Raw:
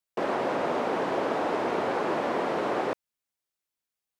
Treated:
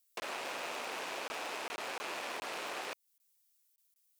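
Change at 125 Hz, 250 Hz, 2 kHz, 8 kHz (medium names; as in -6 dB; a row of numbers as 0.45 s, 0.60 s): -23.0 dB, -21.0 dB, -5.5 dB, +5.0 dB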